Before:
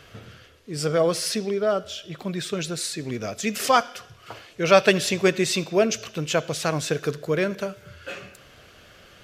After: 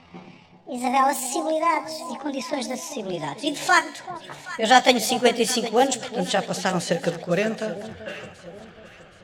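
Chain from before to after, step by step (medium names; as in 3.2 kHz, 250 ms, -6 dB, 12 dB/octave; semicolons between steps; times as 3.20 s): pitch bend over the whole clip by +9.5 st ending unshifted; level-controlled noise filter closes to 2.4 kHz, open at -20.5 dBFS; echo whose repeats swap between lows and highs 386 ms, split 940 Hz, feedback 65%, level -12 dB; trim +2 dB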